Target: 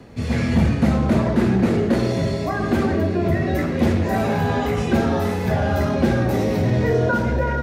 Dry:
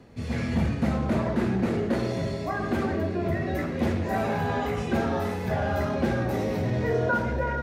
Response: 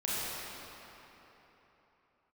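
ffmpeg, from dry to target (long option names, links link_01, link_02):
-filter_complex "[0:a]acrossover=split=430|3000[link_01][link_02][link_03];[link_02]acompressor=threshold=-38dB:ratio=1.5[link_04];[link_01][link_04][link_03]amix=inputs=3:normalize=0,volume=8dB"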